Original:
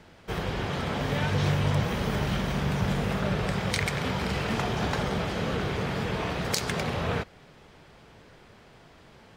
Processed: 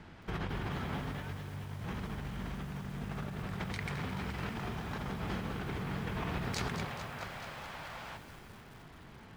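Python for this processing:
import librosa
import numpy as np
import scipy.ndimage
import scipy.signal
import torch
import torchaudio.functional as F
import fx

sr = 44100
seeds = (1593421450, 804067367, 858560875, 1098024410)

y = fx.high_shelf(x, sr, hz=3300.0, db=-12.0)
y = fx.spec_box(y, sr, start_s=6.85, length_s=1.32, low_hz=490.0, high_hz=8600.0, gain_db=12)
y = fx.peak_eq(y, sr, hz=530.0, db=-8.5, octaves=0.9)
y = fx.over_compress(y, sr, threshold_db=-36.0, ratio=-1.0)
y = fx.echo_crushed(y, sr, ms=215, feedback_pct=80, bits=8, wet_db=-10)
y = y * 10.0 ** (-3.5 / 20.0)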